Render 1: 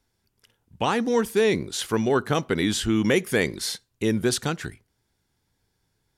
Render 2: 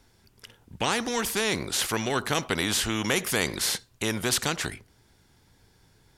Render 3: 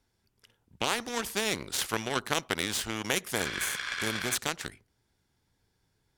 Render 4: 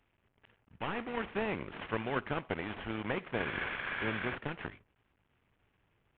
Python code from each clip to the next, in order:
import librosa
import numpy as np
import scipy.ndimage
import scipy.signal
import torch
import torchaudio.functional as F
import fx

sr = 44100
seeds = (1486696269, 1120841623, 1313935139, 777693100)

y1 = fx.high_shelf(x, sr, hz=9100.0, db=-5.0)
y1 = fx.spectral_comp(y1, sr, ratio=2.0)
y2 = fx.spec_repair(y1, sr, seeds[0], start_s=3.4, length_s=0.92, low_hz=970.0, high_hz=5900.0, source='before')
y2 = fx.cheby_harmonics(y2, sr, harmonics=(3, 7), levels_db=(-18, -24), full_scale_db=-9.0)
y2 = fx.rider(y2, sr, range_db=10, speed_s=0.5)
y2 = y2 * librosa.db_to_amplitude(2.0)
y3 = fx.cvsd(y2, sr, bps=16000)